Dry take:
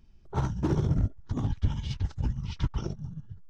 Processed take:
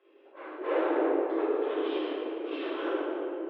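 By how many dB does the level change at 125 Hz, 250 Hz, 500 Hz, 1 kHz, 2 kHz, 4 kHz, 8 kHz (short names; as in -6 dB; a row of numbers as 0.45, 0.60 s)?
under -40 dB, +2.0 dB, +13.0 dB, +6.5 dB, +10.0 dB, +1.5 dB, n/a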